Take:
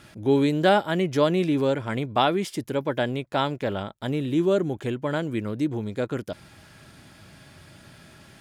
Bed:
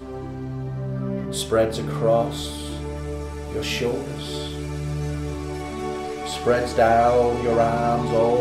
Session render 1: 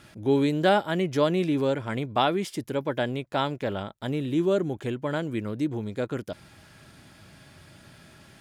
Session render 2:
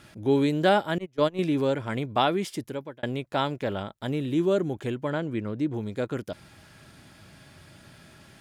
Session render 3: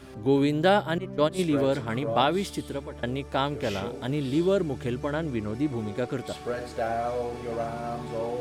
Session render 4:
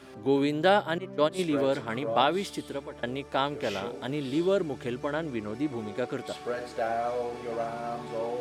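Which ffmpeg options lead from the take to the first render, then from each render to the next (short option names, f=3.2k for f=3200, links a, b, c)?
-af "volume=-2dB"
-filter_complex "[0:a]asettb=1/sr,asplit=3[a][b][c];[a]atrim=end=0.984[d];[b]atrim=start=0.98:end=1.39,asetpts=PTS-STARTPTS,afade=t=in:d=0.004:c=qsin,afade=t=out:st=0.406:d=0.004:c=qsin,agate=range=-28dB:threshold=-23dB:ratio=16:release=100:detection=peak[e];[c]atrim=start=1.386[f];[d][e]acrossfade=d=0.004:c1=hsin:c2=qsin[g];[g][f]acrossfade=d=0.004:c1=qsin:c2=hsin,asettb=1/sr,asplit=3[h][i][j];[h]atrim=end=5.104[k];[i]atrim=start=5.1:end=5.74,asetpts=PTS-STARTPTS,afade=t=in:d=0.004:c=qsin,afade=t=out:st=0.636:d=0.004:c=qsin,aemphasis=mode=reproduction:type=50kf[l];[j]atrim=start=5.736[m];[k][l]acrossfade=d=0.004:c1=hsin:c2=qsin[n];[n][m]acrossfade=d=0.004:c1=qsin:c2=hsin,asplit=2[o][p];[o]atrim=end=3.03,asetpts=PTS-STARTPTS,afade=t=out:st=2.54:d=0.49[q];[p]atrim=start=3.03,asetpts=PTS-STARTPTS,afade=t=in:d=0.004:c=hsin[r];[q][r]concat=n=2:v=0:a=1"
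-filter_complex "[1:a]volume=-12dB[a];[0:a][a]amix=inputs=2:normalize=0"
-af "highpass=f=290:p=1,highshelf=f=8k:g=-5.5"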